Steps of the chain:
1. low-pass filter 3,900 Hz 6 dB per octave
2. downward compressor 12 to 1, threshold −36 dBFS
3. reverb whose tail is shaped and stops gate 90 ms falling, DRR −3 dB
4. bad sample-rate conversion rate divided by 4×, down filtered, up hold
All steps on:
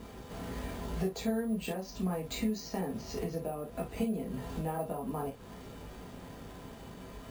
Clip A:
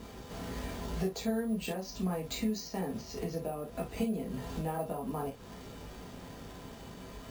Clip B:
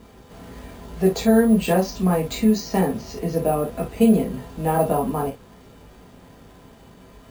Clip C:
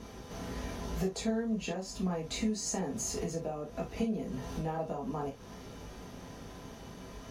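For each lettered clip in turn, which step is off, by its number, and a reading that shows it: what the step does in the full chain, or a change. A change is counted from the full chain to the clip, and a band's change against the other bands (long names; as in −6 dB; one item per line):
1, 4 kHz band +1.5 dB
2, average gain reduction 7.5 dB
4, 8 kHz band +9.0 dB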